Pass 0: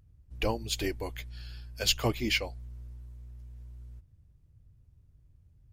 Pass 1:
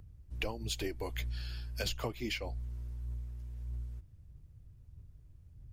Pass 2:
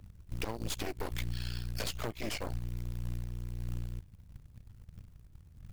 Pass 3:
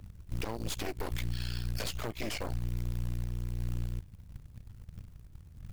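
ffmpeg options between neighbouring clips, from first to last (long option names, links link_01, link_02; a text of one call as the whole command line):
ffmpeg -i in.wav -filter_complex "[0:a]acrossover=split=240|1400[link_01][link_02][link_03];[link_03]alimiter=limit=-20dB:level=0:latency=1:release=371[link_04];[link_01][link_02][link_04]amix=inputs=3:normalize=0,acompressor=threshold=-37dB:ratio=8,flanger=delay=0:depth=3.1:regen=81:speed=1.6:shape=sinusoidal,volume=8dB" out.wav
ffmpeg -i in.wav -af "acompressor=threshold=-42dB:ratio=2,aeval=exprs='0.0531*(cos(1*acos(clip(val(0)/0.0531,-1,1)))-cos(1*PI/2))+0.015*(cos(8*acos(clip(val(0)/0.0531,-1,1)))-cos(8*PI/2))':channel_layout=same,acrusher=bits=5:mode=log:mix=0:aa=0.000001,volume=1dB" out.wav
ffmpeg -i in.wav -af "alimiter=level_in=4.5dB:limit=-24dB:level=0:latency=1:release=31,volume=-4.5dB,volume=4dB" out.wav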